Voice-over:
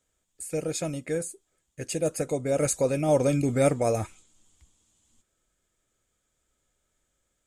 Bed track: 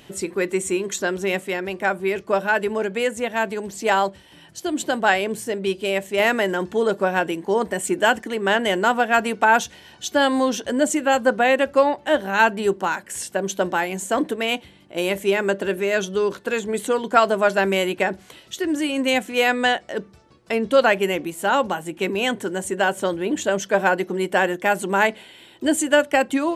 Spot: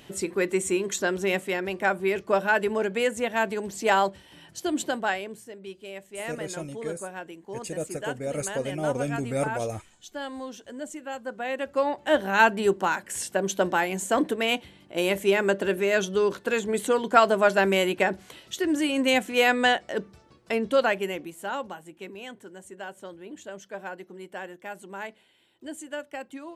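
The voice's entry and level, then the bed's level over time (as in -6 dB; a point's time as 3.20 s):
5.75 s, -5.5 dB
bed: 4.75 s -2.5 dB
5.51 s -17 dB
11.27 s -17 dB
12.17 s -2 dB
20.32 s -2 dB
22.26 s -18.5 dB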